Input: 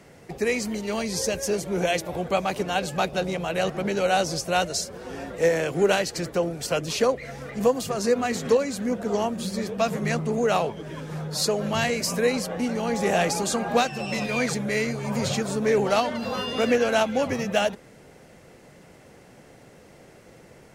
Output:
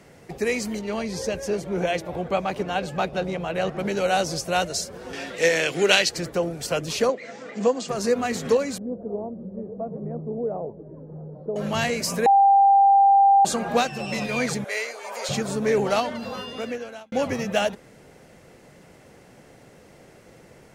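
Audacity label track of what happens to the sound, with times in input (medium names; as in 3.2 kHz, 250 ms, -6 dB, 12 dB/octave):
0.790000	3.790000	treble shelf 5.1 kHz -12 dB
5.130000	6.090000	frequency weighting D
7.090000	7.890000	Chebyshev band-pass 190–7600 Hz, order 4
8.780000	11.560000	four-pole ladder low-pass 720 Hz, resonance 25%
12.260000	13.450000	bleep 792 Hz -12 dBFS
14.640000	15.290000	high-pass 510 Hz 24 dB/octave
15.870000	17.120000	fade out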